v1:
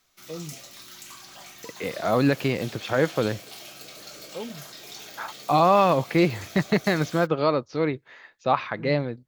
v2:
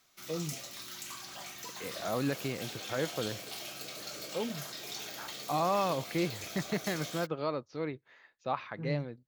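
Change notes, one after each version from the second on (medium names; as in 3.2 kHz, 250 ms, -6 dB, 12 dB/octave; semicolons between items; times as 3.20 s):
second voice -11.5 dB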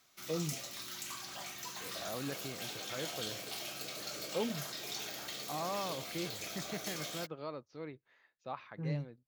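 second voice -9.0 dB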